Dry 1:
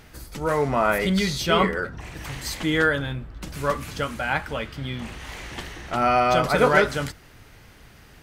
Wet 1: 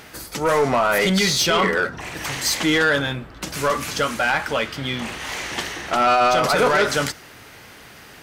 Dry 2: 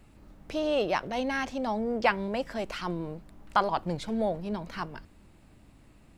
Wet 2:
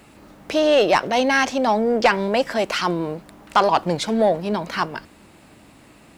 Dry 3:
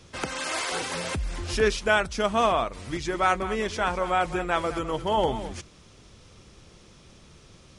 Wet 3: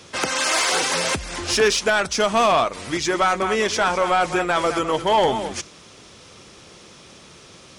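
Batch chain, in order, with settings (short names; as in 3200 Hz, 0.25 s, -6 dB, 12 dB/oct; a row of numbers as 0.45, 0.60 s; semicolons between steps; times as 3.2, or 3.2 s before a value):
HPF 330 Hz 6 dB/oct; dynamic EQ 5900 Hz, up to +4 dB, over -49 dBFS, Q 1.8; limiter -14.5 dBFS; soft clip -21 dBFS; match loudness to -20 LUFS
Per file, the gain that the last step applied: +9.5, +14.0, +10.0 dB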